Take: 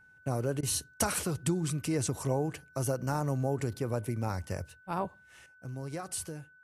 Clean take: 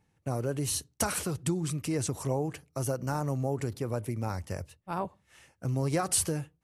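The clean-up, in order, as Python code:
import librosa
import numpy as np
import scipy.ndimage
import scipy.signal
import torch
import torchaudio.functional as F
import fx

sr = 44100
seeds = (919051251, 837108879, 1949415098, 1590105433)

y = fx.notch(x, sr, hz=1500.0, q=30.0)
y = fx.fix_interpolate(y, sr, at_s=(0.61,), length_ms=18.0)
y = fx.gain(y, sr, db=fx.steps((0.0, 0.0), (5.46, 10.0)))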